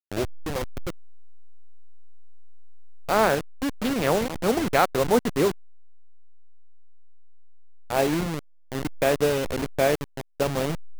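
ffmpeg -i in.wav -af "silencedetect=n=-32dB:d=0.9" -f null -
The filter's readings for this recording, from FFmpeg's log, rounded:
silence_start: 0.90
silence_end: 3.09 | silence_duration: 2.19
silence_start: 5.51
silence_end: 7.90 | silence_duration: 2.39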